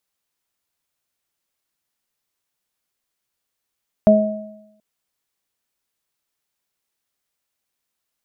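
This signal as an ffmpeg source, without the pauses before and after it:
ffmpeg -f lavfi -i "aevalsrc='0.316*pow(10,-3*t/0.88)*sin(2*PI*212*t)+0.0631*pow(10,-3*t/0.47)*sin(2*PI*424*t)+0.422*pow(10,-3*t/0.82)*sin(2*PI*636*t)':duration=0.73:sample_rate=44100" out.wav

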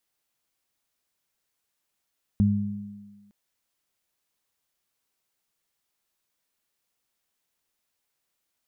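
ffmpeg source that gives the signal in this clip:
ffmpeg -f lavfi -i "aevalsrc='0.112*pow(10,-3*t/1.06)*sin(2*PI*102*t)+0.133*pow(10,-3*t/1.46)*sin(2*PI*204*t)':duration=0.91:sample_rate=44100" out.wav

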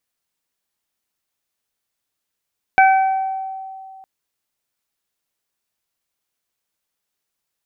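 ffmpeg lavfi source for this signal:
ffmpeg -f lavfi -i "aevalsrc='0.398*pow(10,-3*t/2.42)*sin(2*PI*767*t)+0.224*pow(10,-3*t/0.84)*sin(2*PI*1534*t)+0.168*pow(10,-3*t/0.89)*sin(2*PI*2301*t)':duration=1.26:sample_rate=44100" out.wav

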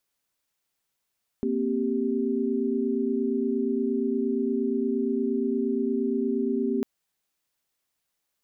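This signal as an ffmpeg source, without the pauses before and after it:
ffmpeg -f lavfi -i "aevalsrc='0.0422*(sin(2*PI*233.08*t)+sin(2*PI*261.63*t)+sin(2*PI*392*t))':duration=5.4:sample_rate=44100" out.wav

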